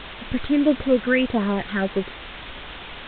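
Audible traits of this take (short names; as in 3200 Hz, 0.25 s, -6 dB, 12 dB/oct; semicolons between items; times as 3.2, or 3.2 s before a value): phasing stages 6, 1.6 Hz, lowest notch 710–3100 Hz; a quantiser's noise floor 6-bit, dither triangular; A-law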